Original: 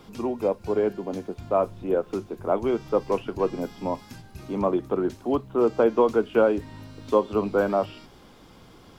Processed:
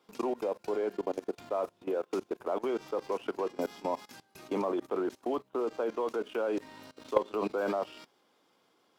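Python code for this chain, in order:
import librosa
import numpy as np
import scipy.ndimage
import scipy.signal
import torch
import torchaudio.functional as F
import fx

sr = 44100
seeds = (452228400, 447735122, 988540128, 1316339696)

y = scipy.signal.sosfilt(scipy.signal.butter(2, 360.0, 'highpass', fs=sr, output='sos'), x)
y = fx.level_steps(y, sr, step_db=17)
y = fx.leveller(y, sr, passes=1)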